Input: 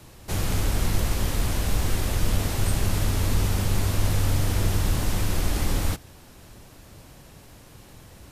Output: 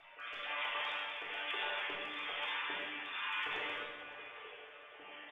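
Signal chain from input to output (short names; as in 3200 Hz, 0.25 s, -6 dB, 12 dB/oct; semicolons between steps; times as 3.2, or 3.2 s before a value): sine-wave speech; high shelf 2100 Hz +10 dB; compressor 12:1, threshold -20 dBFS, peak gain reduction 11 dB; resonator bank G2 minor, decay 0.4 s; time stretch by phase-locked vocoder 0.64×; overloaded stage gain 29 dB; rotary speaker horn 1.1 Hz; feedback echo 0.563 s, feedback 51%, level -18 dB; reverb RT60 1.5 s, pre-delay 3 ms, DRR -6 dB; gain -5 dB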